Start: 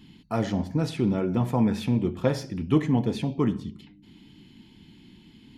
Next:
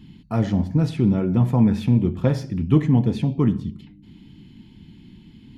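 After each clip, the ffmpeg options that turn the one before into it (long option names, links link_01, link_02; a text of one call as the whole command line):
ffmpeg -i in.wav -af "bass=frequency=250:gain=9,treble=frequency=4000:gain=-3" out.wav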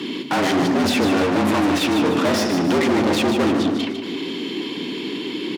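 ffmpeg -i in.wav -filter_complex "[0:a]asplit=2[link_01][link_02];[link_02]highpass=frequency=720:poles=1,volume=43dB,asoftclip=type=tanh:threshold=-5dB[link_03];[link_01][link_03]amix=inputs=2:normalize=0,lowpass=frequency=5100:poles=1,volume=-6dB,aecho=1:1:151|302|453|604|755:0.422|0.198|0.0932|0.0438|0.0206,afreqshift=88,volume=-7.5dB" out.wav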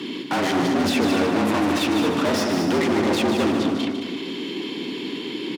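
ffmpeg -i in.wav -af "aecho=1:1:219:0.422,volume=-3dB" out.wav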